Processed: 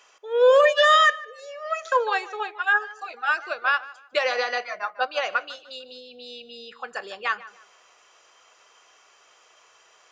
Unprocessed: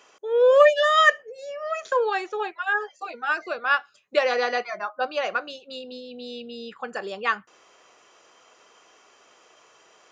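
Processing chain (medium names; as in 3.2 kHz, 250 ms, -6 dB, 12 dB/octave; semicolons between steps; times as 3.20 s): peaking EQ 230 Hz -13.5 dB 2.1 oct; peak limiter -16.5 dBFS, peak gain reduction 10 dB; tape echo 150 ms, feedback 30%, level -13 dB, low-pass 3.2 kHz; upward expansion 1.5:1, over -34 dBFS; trim +7.5 dB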